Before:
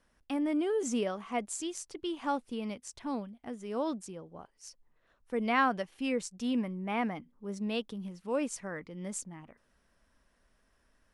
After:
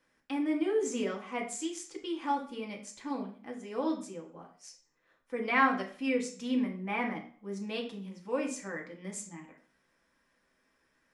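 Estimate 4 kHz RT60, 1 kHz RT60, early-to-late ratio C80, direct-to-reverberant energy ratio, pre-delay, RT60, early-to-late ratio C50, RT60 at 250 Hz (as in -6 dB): 0.40 s, 0.45 s, 13.5 dB, 0.5 dB, 3 ms, 0.45 s, 9.5 dB, 0.45 s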